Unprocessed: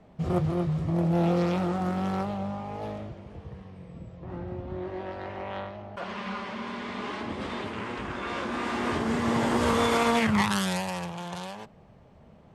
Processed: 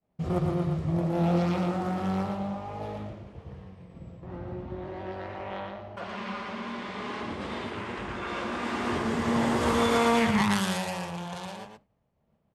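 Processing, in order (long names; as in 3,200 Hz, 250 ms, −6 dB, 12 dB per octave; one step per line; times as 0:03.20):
downward expander −41 dBFS
single-tap delay 116 ms −4.5 dB
level −2 dB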